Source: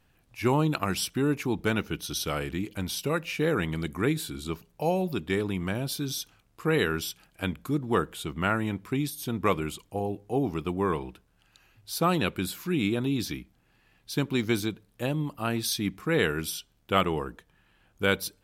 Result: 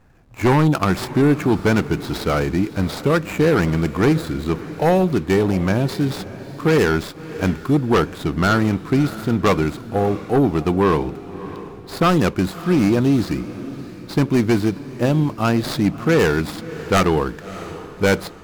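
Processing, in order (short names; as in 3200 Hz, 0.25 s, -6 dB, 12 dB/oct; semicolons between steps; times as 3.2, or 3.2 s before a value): median filter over 15 samples; sine folder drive 9 dB, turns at -10 dBFS; diffused feedback echo 0.631 s, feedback 44%, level -15 dB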